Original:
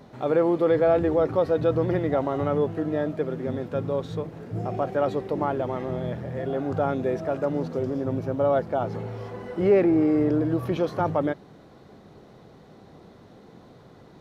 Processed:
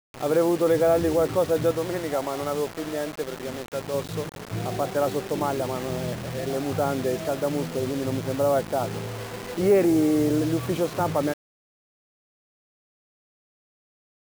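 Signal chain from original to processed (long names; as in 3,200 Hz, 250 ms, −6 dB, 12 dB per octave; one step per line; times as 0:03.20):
0:01.71–0:03.94: low-shelf EQ 270 Hz −11.5 dB
bit-depth reduction 6 bits, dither none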